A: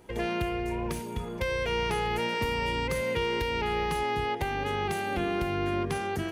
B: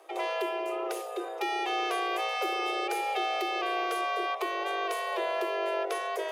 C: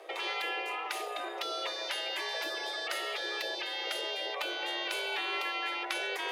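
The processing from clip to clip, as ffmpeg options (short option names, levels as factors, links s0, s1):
-af "areverse,acompressor=mode=upward:threshold=0.0251:ratio=2.5,areverse,afreqshift=300,volume=0.841"
-af "equalizer=f=500:t=o:w=1:g=11,equalizer=f=2000:t=o:w=1:g=9,equalizer=f=4000:t=o:w=1:g=8,afftfilt=real='re*lt(hypot(re,im),0.158)':imag='im*lt(hypot(re,im),0.158)':win_size=1024:overlap=0.75,volume=0.75"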